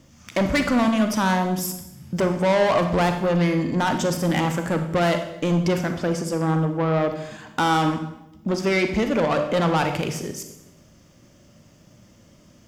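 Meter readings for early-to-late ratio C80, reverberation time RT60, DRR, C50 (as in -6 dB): 10.5 dB, 0.90 s, 6.5 dB, 8.0 dB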